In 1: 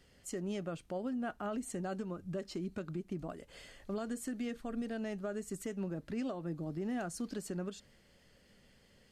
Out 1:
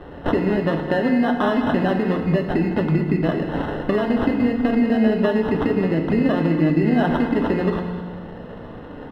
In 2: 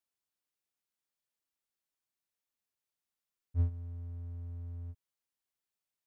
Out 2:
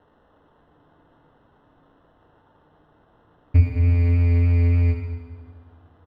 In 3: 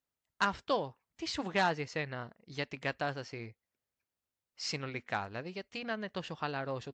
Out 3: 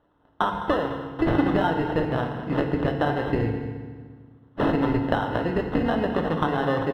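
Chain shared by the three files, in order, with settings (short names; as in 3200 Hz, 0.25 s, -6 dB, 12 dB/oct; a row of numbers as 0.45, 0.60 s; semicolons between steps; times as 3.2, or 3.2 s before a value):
notches 50/100/150/200 Hz; sine folder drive 3 dB, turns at -16.5 dBFS; low shelf 100 Hz -7.5 dB; compressor 12:1, threshold -38 dBFS; sample-and-hold 19×; vibrato 3.4 Hz 9.3 cents; air absorption 450 m; echo 0.209 s -14.5 dB; FDN reverb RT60 1.6 s, low-frequency decay 1.4×, high-frequency decay 0.85×, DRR 3.5 dB; normalise peaks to -6 dBFS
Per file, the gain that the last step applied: +22.0, +25.5, +18.5 dB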